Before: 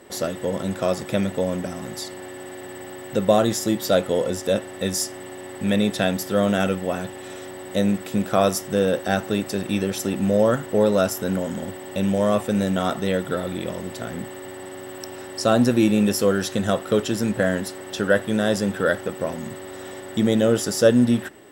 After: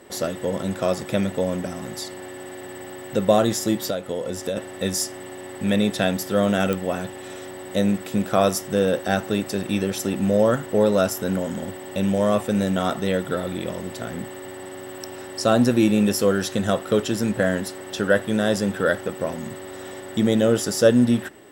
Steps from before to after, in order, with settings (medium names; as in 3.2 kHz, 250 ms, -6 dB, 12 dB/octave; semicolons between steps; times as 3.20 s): 3.75–4.57 s: compression 10:1, threshold -23 dBFS, peak gain reduction 10.5 dB; clicks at 6.73 s, -11 dBFS